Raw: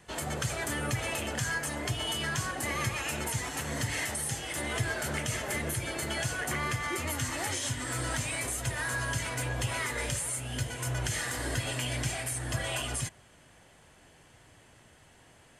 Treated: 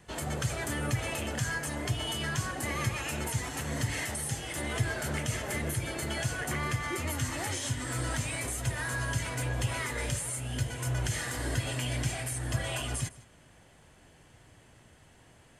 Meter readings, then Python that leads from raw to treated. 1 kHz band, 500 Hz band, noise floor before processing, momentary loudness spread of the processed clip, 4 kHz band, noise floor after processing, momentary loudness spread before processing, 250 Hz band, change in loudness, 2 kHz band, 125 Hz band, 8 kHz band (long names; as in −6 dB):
−1.5 dB, −0.5 dB, −59 dBFS, 2 LU, −2.0 dB, −59 dBFS, 2 LU, +1.0 dB, −0.5 dB, −2.0 dB, +2.5 dB, −2.0 dB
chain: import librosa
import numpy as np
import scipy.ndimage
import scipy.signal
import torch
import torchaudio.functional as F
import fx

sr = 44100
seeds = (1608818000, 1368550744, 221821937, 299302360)

y = fx.low_shelf(x, sr, hz=320.0, db=5.0)
y = y + 10.0 ** (-20.5 / 20.0) * np.pad(y, (int(157 * sr / 1000.0), 0))[:len(y)]
y = y * librosa.db_to_amplitude(-2.0)